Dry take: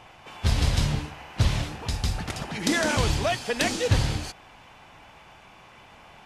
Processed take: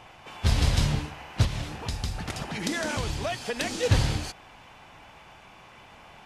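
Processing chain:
0:01.44–0:03.83: downward compressor 3 to 1, threshold −28 dBFS, peak gain reduction 8.5 dB

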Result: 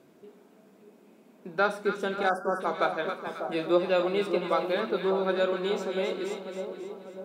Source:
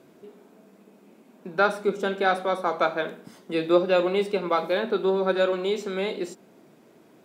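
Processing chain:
0:02.23–0:03.02: downward expander −25 dBFS
echo with a time of its own for lows and highs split 1,100 Hz, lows 596 ms, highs 269 ms, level −7 dB
0:02.29–0:02.61: time-frequency box erased 1,700–4,700 Hz
level −4 dB

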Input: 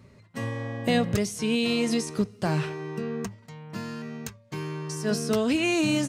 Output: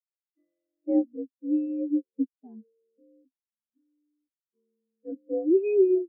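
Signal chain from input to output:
single-sideband voice off tune +66 Hz 170–2,800 Hz
every bin expanded away from the loudest bin 4 to 1

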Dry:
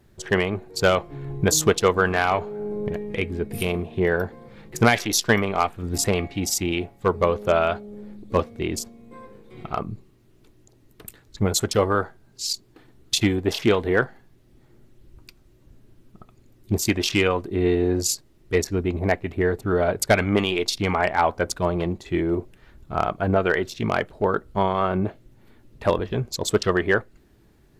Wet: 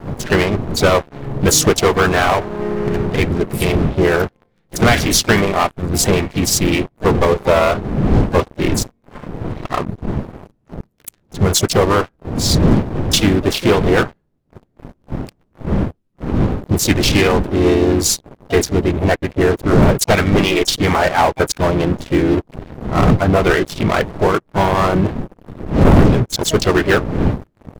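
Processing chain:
wind on the microphone 230 Hz −25 dBFS
leveller curve on the samples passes 5
pitch-shifted copies added −3 semitones −5 dB, +7 semitones −13 dB
level −10.5 dB

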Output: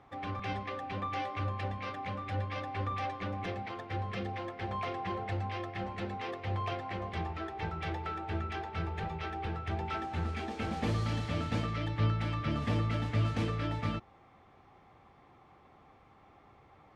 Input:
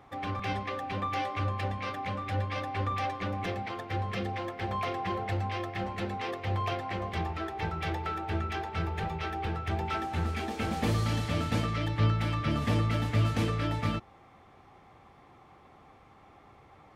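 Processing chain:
high-frequency loss of the air 56 metres
level −3.5 dB

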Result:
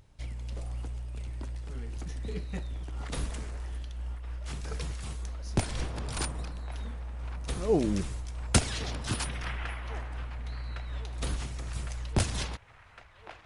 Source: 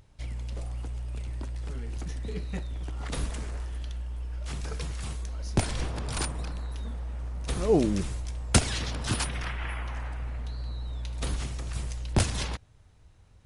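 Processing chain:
on a send: delay with a band-pass on its return 1,108 ms, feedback 69%, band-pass 1,300 Hz, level −11.5 dB
on the sum: amplitude modulation by smooth noise, depth 55%

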